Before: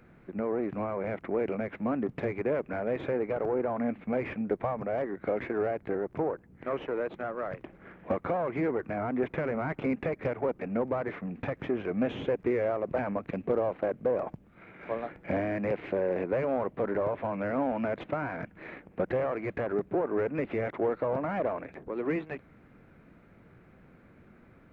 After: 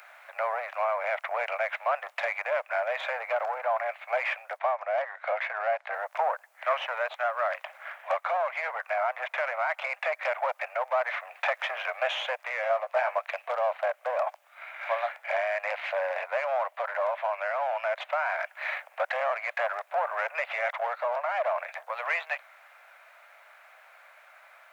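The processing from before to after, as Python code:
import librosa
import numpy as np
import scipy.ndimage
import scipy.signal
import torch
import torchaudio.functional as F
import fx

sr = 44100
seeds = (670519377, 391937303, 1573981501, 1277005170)

y = scipy.signal.sosfilt(scipy.signal.butter(12, 600.0, 'highpass', fs=sr, output='sos'), x)
y = fx.high_shelf(y, sr, hz=2600.0, db=9.5)
y = fx.rider(y, sr, range_db=4, speed_s=0.5)
y = fx.air_absorb(y, sr, metres=92.0, at=(4.58, 5.92), fade=0.02)
y = fx.doubler(y, sr, ms=16.0, db=-6.0, at=(12.62, 13.18))
y = y * librosa.db_to_amplitude(7.0)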